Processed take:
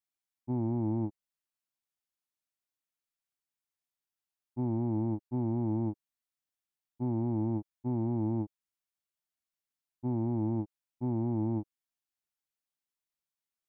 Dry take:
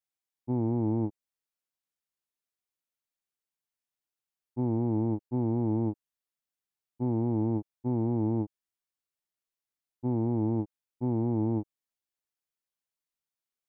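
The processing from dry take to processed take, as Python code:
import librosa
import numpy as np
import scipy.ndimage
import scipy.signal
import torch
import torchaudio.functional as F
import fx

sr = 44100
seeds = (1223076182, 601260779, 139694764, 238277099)

y = fx.peak_eq(x, sr, hz=460.0, db=-13.0, octaves=0.22)
y = F.gain(torch.from_numpy(y), -2.5).numpy()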